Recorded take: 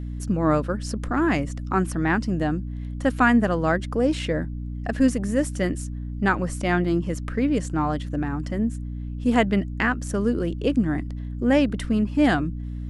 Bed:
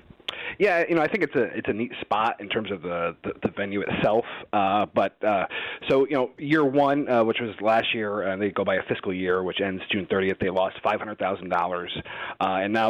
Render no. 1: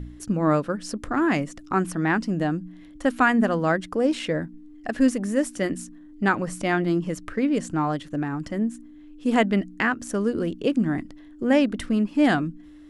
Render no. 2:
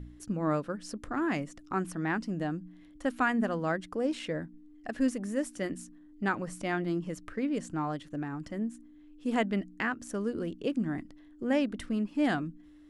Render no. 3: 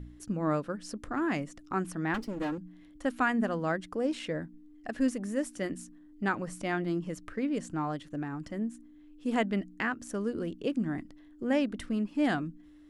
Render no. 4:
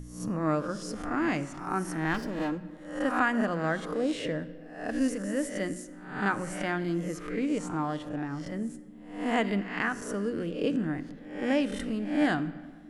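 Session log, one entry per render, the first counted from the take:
de-hum 60 Hz, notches 4
trim -8.5 dB
2.14–2.58 s: comb filter that takes the minimum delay 3.6 ms
reverse spectral sustain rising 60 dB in 0.58 s; simulated room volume 1900 m³, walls mixed, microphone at 0.47 m

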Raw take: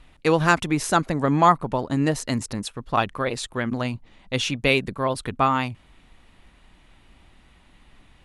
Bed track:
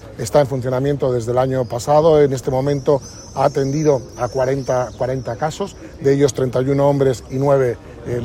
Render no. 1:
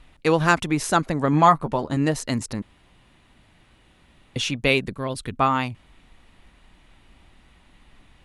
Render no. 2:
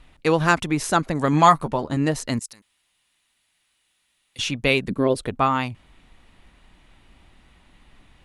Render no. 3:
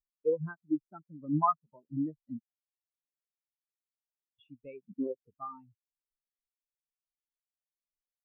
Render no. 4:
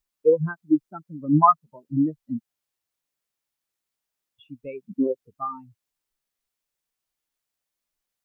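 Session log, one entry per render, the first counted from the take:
1.32–1.97 s: doubling 13 ms -8 dB; 2.62–4.36 s: room tone; 4.93–5.38 s: peaking EQ 890 Hz -8 dB 1.8 oct
1.15–1.68 s: treble shelf 2.9 kHz +10.5 dB; 2.39–4.39 s: pre-emphasis filter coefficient 0.97; 4.89–5.38 s: peaking EQ 230 Hz -> 830 Hz +14.5 dB 1.3 oct
compression 2:1, threshold -36 dBFS, peak gain reduction 15 dB; spectral contrast expander 4:1
trim +11 dB

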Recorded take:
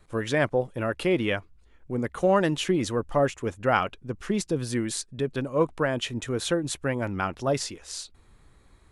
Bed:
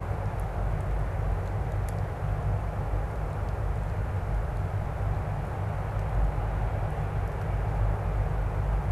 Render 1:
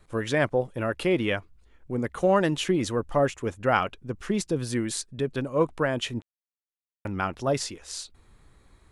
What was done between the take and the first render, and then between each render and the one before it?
6.22–7.05 s: mute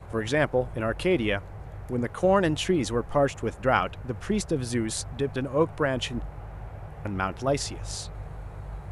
add bed -10.5 dB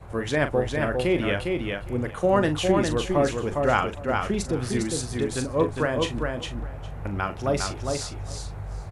doubling 40 ms -10 dB; feedback delay 406 ms, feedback 15%, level -4 dB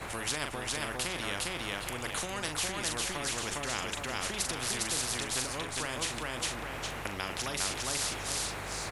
compression 2:1, threshold -29 dBFS, peak gain reduction 8 dB; spectrum-flattening compressor 4:1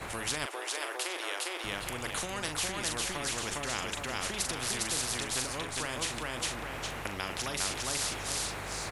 0.46–1.64 s: elliptic high-pass 340 Hz, stop band 50 dB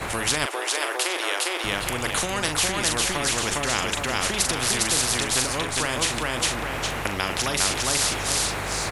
trim +10 dB

